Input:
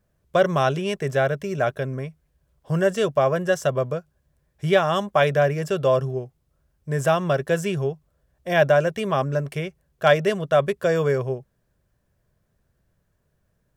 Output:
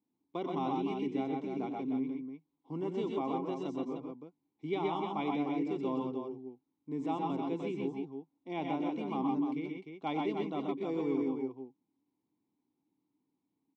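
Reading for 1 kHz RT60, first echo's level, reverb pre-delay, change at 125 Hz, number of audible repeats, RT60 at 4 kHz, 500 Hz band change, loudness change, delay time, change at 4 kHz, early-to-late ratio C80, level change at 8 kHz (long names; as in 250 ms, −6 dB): no reverb audible, −12.5 dB, no reverb audible, −19.5 dB, 3, no reverb audible, −17.0 dB, −13.5 dB, 92 ms, −17.0 dB, no reverb audible, below −25 dB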